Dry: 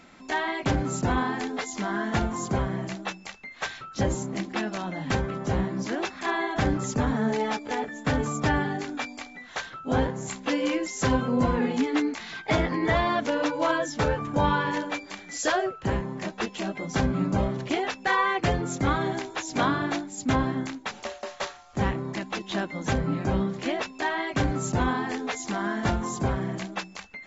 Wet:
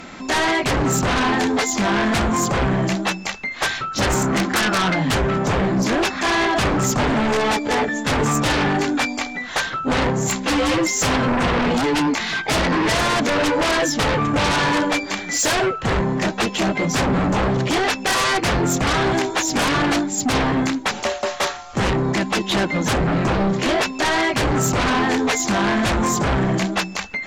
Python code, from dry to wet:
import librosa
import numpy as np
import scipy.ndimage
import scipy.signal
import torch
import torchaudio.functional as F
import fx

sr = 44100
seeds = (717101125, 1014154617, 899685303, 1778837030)

p1 = fx.peak_eq(x, sr, hz=1400.0, db=13.0, octaves=1.1, at=(4.01, 4.94), fade=0.02)
p2 = fx.fold_sine(p1, sr, drive_db=17, ceiling_db=-10.5)
y = p1 + (p2 * librosa.db_to_amplitude(-7.5))